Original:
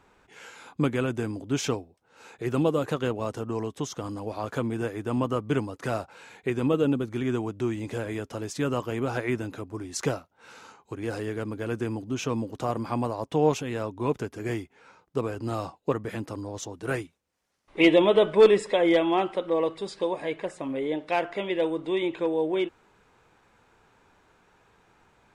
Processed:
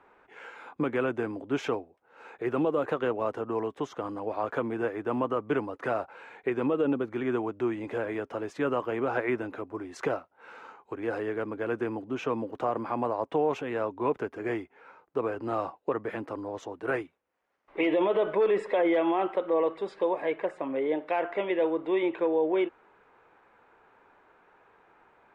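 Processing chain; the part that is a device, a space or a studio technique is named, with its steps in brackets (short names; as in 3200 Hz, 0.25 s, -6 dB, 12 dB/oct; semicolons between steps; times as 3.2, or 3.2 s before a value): DJ mixer with the lows and highs turned down (three-band isolator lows -14 dB, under 300 Hz, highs -21 dB, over 2500 Hz; limiter -20.5 dBFS, peak gain reduction 11.5 dB); gain +3 dB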